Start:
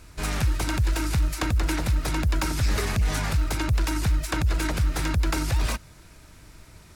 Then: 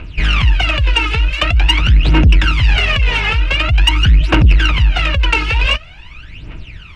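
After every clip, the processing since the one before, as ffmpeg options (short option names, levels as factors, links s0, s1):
-af "aphaser=in_gain=1:out_gain=1:delay=2.4:decay=0.79:speed=0.46:type=triangular,lowpass=f=2800:t=q:w=7.1,acontrast=78,volume=0.891"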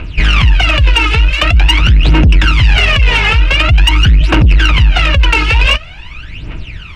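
-filter_complex "[0:a]asplit=2[s0][s1];[s1]asoftclip=type=tanh:threshold=0.224,volume=0.398[s2];[s0][s2]amix=inputs=2:normalize=0,alimiter=level_in=1.68:limit=0.891:release=50:level=0:latency=1,volume=0.891"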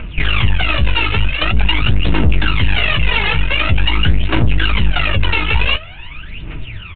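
-af "aresample=8000,aeval=exprs='clip(val(0),-1,0.1)':c=same,aresample=44100,flanger=delay=4.3:depth=9.9:regen=46:speed=0.63:shape=triangular,volume=1.26"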